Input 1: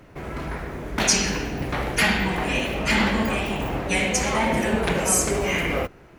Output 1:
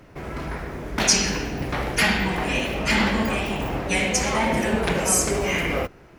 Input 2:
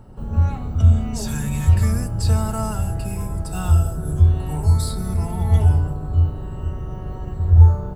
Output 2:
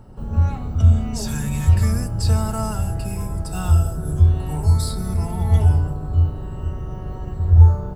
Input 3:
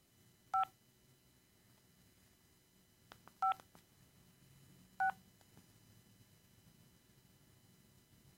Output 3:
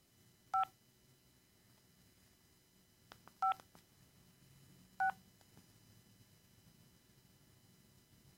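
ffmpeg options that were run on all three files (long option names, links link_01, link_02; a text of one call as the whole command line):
ffmpeg -i in.wav -af "equalizer=frequency=5200:width_type=o:width=0.3:gain=3.5" out.wav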